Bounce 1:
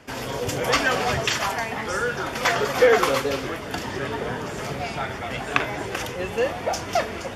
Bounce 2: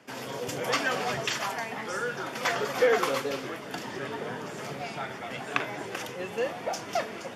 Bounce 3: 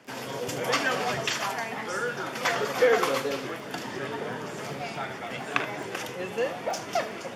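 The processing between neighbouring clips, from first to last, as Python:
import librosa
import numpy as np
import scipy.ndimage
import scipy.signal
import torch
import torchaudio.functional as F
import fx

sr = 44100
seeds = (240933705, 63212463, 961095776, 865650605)

y1 = scipy.signal.sosfilt(scipy.signal.butter(4, 130.0, 'highpass', fs=sr, output='sos'), x)
y1 = F.gain(torch.from_numpy(y1), -6.5).numpy()
y2 = fx.dmg_crackle(y1, sr, seeds[0], per_s=12.0, level_db=-39.0)
y2 = y2 + 10.0 ** (-14.5 / 20.0) * np.pad(y2, (int(76 * sr / 1000.0), 0))[:len(y2)]
y2 = F.gain(torch.from_numpy(y2), 1.5).numpy()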